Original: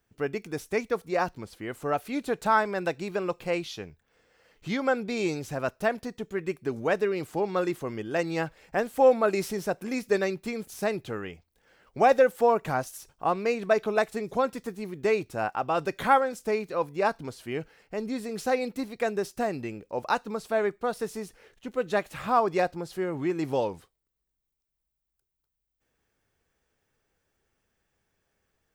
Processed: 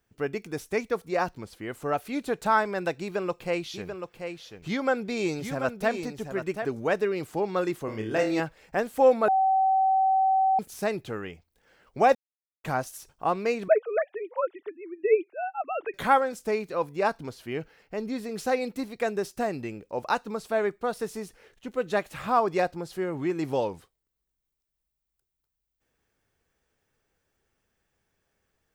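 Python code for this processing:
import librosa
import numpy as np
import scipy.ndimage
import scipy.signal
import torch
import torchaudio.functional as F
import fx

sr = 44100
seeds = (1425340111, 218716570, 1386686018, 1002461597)

y = fx.echo_single(x, sr, ms=736, db=-7.5, at=(3.0, 6.66))
y = fx.room_flutter(y, sr, wall_m=4.7, rt60_s=0.36, at=(7.85, 8.4))
y = fx.sine_speech(y, sr, at=(13.68, 15.94))
y = fx.peak_eq(y, sr, hz=8500.0, db=-5.5, octaves=0.6, at=(17.29, 18.37))
y = fx.edit(y, sr, fx.bleep(start_s=9.28, length_s=1.31, hz=766.0, db=-19.0),
    fx.silence(start_s=12.15, length_s=0.49), tone=tone)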